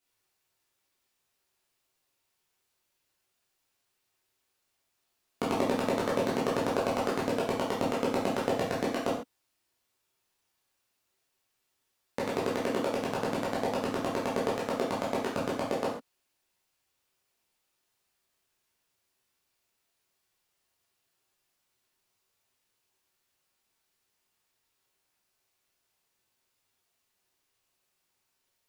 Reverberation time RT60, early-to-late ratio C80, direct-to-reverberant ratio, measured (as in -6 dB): not exponential, 8.5 dB, -6.5 dB